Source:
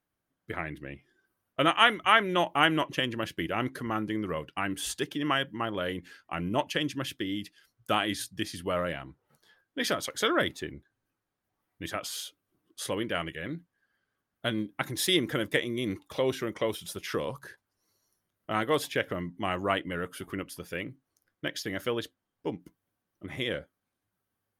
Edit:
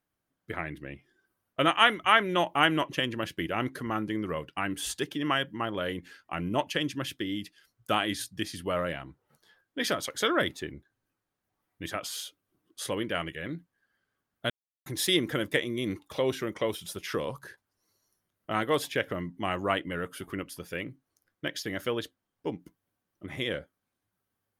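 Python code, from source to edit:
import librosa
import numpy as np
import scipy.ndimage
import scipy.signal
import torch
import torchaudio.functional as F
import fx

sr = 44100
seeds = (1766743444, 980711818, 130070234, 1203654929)

y = fx.edit(x, sr, fx.silence(start_s=14.5, length_s=0.36), tone=tone)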